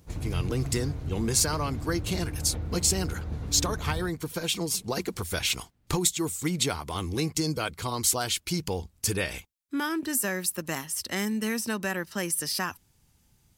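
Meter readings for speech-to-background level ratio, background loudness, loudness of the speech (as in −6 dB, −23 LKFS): 7.0 dB, −35.5 LKFS, −28.5 LKFS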